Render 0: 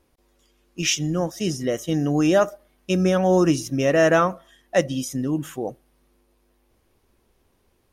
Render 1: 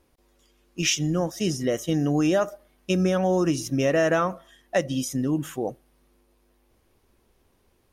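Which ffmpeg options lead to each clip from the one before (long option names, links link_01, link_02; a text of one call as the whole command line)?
ffmpeg -i in.wav -af "acompressor=threshold=-18dB:ratio=6" out.wav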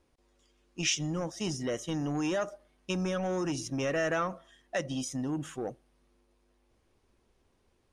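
ffmpeg -i in.wav -filter_complex "[0:a]lowpass=frequency=9400:width=0.5412,lowpass=frequency=9400:width=1.3066,acrossover=split=1100[link_01][link_02];[link_01]asoftclip=type=tanh:threshold=-22dB[link_03];[link_03][link_02]amix=inputs=2:normalize=0,volume=-5.5dB" out.wav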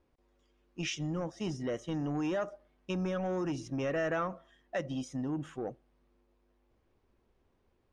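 ffmpeg -i in.wav -af "aemphasis=mode=reproduction:type=75fm,volume=-2.5dB" out.wav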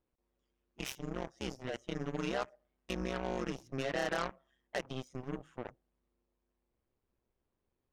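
ffmpeg -i in.wav -af "tremolo=f=130:d=0.621,aeval=exprs='0.0668*(cos(1*acos(clip(val(0)/0.0668,-1,1)))-cos(1*PI/2))+0.00168*(cos(3*acos(clip(val(0)/0.0668,-1,1)))-cos(3*PI/2))+0.0119*(cos(7*acos(clip(val(0)/0.0668,-1,1)))-cos(7*PI/2))':channel_layout=same,volume=1dB" out.wav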